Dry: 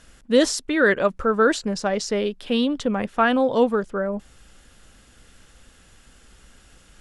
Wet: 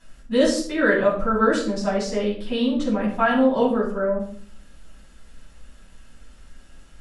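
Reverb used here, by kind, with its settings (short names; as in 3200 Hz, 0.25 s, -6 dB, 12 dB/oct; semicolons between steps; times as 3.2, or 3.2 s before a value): shoebox room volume 600 m³, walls furnished, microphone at 9.1 m; gain -13.5 dB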